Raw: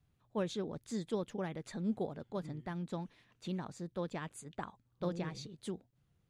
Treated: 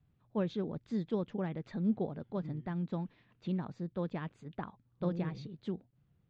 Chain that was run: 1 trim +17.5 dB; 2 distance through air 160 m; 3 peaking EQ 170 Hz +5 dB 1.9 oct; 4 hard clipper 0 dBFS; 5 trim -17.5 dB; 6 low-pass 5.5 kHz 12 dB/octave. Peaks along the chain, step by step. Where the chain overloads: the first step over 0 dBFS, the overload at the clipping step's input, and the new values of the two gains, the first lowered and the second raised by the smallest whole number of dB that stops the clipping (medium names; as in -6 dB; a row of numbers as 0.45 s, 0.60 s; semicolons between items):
-7.5 dBFS, -7.5 dBFS, -4.0 dBFS, -4.0 dBFS, -21.5 dBFS, -21.5 dBFS; nothing clips